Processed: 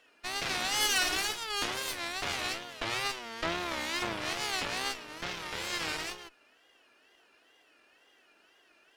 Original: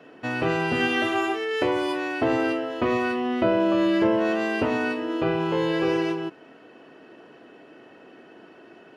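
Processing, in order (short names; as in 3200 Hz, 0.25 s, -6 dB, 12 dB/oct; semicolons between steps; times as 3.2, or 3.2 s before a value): differentiator; wow and flutter 140 cents; added harmonics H 3 -15 dB, 6 -8 dB, 8 -21 dB, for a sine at -26 dBFS; gain +8.5 dB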